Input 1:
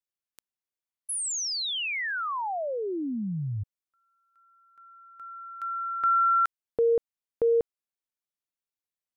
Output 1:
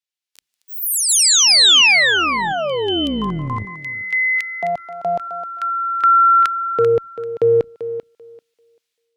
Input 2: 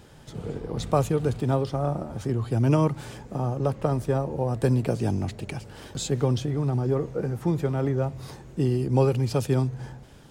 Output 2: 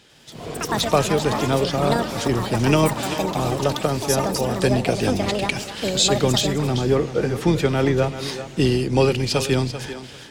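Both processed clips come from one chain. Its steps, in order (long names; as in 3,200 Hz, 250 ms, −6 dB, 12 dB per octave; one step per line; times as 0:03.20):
sub-octave generator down 2 octaves, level −3 dB
meter weighting curve D
automatic gain control gain up to 15 dB
on a send: feedback echo with a high-pass in the loop 390 ms, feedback 17%, high-pass 200 Hz, level −11 dB
on the sum: delay with pitch and tempo change per echo 97 ms, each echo +7 semitones, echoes 2, each echo −6 dB
level −4.5 dB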